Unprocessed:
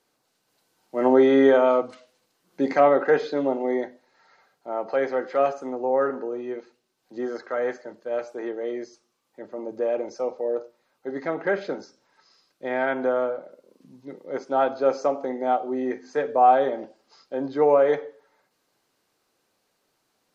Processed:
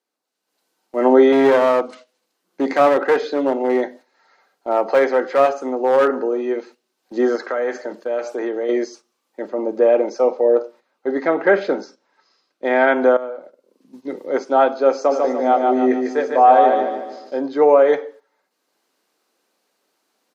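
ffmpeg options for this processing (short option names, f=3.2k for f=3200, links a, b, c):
-filter_complex "[0:a]asettb=1/sr,asplit=3[a][b][c];[a]atrim=end=1.324[d];[b]atrim=start=1.32:end=6.08,asetpts=PTS-STARTPTS,afade=t=in:d=0.004:c=qsin,afade=t=out:st=4.756:d=0.004:c=qsin,aeval=exprs='clip(val(0),-1,0.1)':c=same[e];[c]atrim=start=6.076[f];[d][e]acrossfade=d=0.004:c1=hsin:c2=qsin[g];[g][f]acrossfade=d=0.004:c1=qsin:c2=hsin,asettb=1/sr,asplit=3[h][i][j];[h]atrim=end=7.354[k];[i]atrim=start=7.35:end=8.69,asetpts=PTS-STARTPTS,afade=t=in:d=0.004:c=qsin,afade=t=out:st=1.336:d=0.004:c=qsin,acompressor=threshold=-34dB:ratio=2.5:attack=3.2:release=140:knee=1:detection=peak[l];[j]atrim=start=8.686[m];[k][l]acrossfade=d=0.004:c1=hsin:c2=qsin[n];[n][m]acrossfade=d=0.004:c1=qsin:c2=hsin,asettb=1/sr,asplit=3[o][p][q];[o]atrim=end=9.504[r];[p]atrim=start=9.5:end=12.65,asetpts=PTS-STARTPTS,afade=t=in:d=0.004:c=qsin,afade=t=out:st=3.146:d=0.004:c=qsin,lowpass=f=3.9k:p=1[s];[q]atrim=start=12.646[t];[r][s]acrossfade=d=0.004:c1=hsin:c2=qsin[u];[u][t]acrossfade=d=0.004:c1=qsin:c2=hsin,asplit=3[v][w][x];[v]afade=t=out:st=15.1:d=0.02[y];[w]aecho=1:1:148|296|444|592|740:0.668|0.287|0.124|0.0531|0.0228,afade=t=in:st=15.1:d=0.02,afade=t=out:st=17.4:d=0.02[z];[x]afade=t=in:st=17.4:d=0.02[aa];[y][z][aa]amix=inputs=3:normalize=0,asplit=2[ab][ac];[ab]atrim=end=13.17,asetpts=PTS-STARTPTS,afade=t=out:st=13.166:d=0.004:c=hsin:silence=0.158489[ad];[ac]atrim=start=13.17,asetpts=PTS-STARTPTS,afade=t=in:d=0.92:silence=0.158489[ae];[ad][ae]concat=n=2:v=0:a=1,dynaudnorm=f=330:g=3:m=13.5dB,highpass=f=210:w=0.5412,highpass=f=210:w=1.3066,agate=range=-10dB:threshold=-39dB:ratio=16:detection=peak,volume=-1dB"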